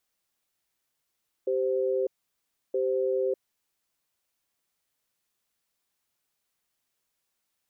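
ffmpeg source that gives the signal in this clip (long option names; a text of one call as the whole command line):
ffmpeg -f lavfi -i "aevalsrc='0.0473*(sin(2*PI*389*t)+sin(2*PI*519*t))*clip(min(mod(t,1.27),0.6-mod(t,1.27))/0.005,0,1)':duration=2.11:sample_rate=44100" out.wav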